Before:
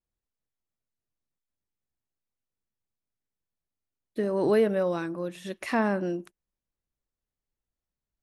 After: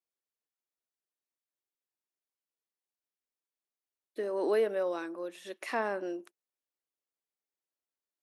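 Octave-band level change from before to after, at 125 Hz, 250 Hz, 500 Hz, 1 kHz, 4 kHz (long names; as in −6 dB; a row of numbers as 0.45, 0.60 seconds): below −20 dB, −11.0 dB, −5.0 dB, −4.5 dB, −4.5 dB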